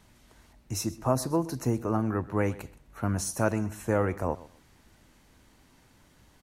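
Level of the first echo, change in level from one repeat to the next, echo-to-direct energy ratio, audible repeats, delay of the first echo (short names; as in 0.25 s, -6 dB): -19.0 dB, -13.5 dB, -19.0 dB, 2, 0.127 s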